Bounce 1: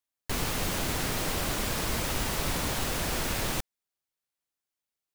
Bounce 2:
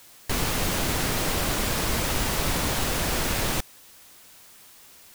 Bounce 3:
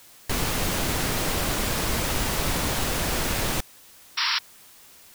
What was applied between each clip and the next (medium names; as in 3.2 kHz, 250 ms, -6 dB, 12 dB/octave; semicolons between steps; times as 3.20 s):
added noise white -55 dBFS; trim +4.5 dB
painted sound noise, 4.17–4.39 s, 870–5700 Hz -24 dBFS